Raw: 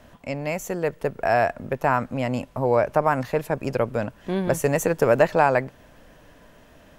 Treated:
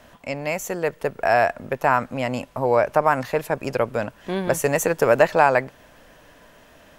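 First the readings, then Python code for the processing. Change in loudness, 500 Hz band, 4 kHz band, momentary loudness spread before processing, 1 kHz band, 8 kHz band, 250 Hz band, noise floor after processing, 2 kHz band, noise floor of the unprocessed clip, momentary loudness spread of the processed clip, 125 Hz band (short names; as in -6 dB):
+1.5 dB, +1.5 dB, +4.0 dB, 9 LU, +2.5 dB, +4.0 dB, -1.5 dB, -52 dBFS, +3.5 dB, -52 dBFS, 10 LU, -2.5 dB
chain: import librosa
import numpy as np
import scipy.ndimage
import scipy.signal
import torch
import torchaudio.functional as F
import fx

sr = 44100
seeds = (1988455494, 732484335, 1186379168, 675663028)

y = fx.low_shelf(x, sr, hz=400.0, db=-7.5)
y = F.gain(torch.from_numpy(y), 4.0).numpy()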